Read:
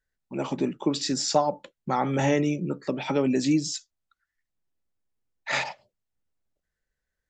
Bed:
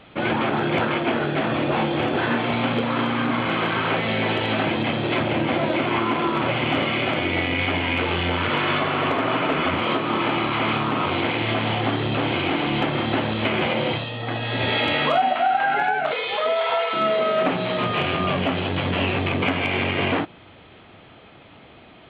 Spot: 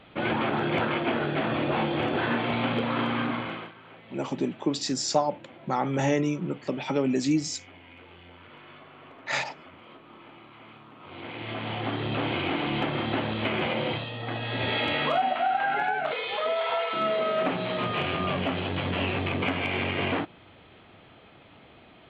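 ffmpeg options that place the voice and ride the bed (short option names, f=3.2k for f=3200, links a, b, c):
-filter_complex "[0:a]adelay=3800,volume=-1.5dB[a];[1:a]volume=17dB,afade=t=out:st=3.18:d=0.55:silence=0.0749894,afade=t=in:st=11:d=1.17:silence=0.0841395[b];[a][b]amix=inputs=2:normalize=0"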